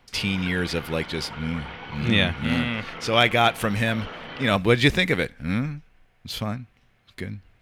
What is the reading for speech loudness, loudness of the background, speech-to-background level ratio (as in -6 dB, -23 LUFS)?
-23.5 LUFS, -38.0 LUFS, 14.5 dB